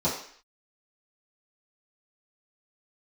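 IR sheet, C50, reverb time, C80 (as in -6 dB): 5.5 dB, 0.55 s, 9.0 dB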